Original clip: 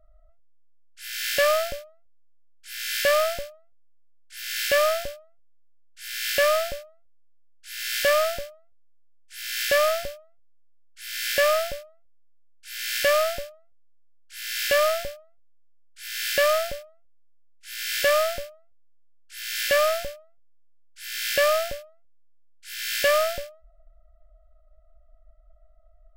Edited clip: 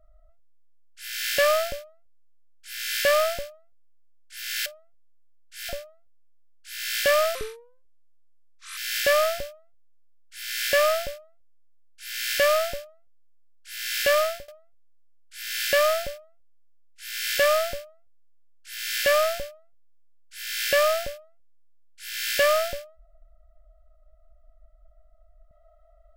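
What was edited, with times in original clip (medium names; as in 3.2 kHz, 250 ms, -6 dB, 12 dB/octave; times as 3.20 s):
4.66–5.11 s: delete
6.14–6.68 s: delete
8.34–9.42 s: speed 76%
14.74–15.13 s: fade out equal-power, to -22 dB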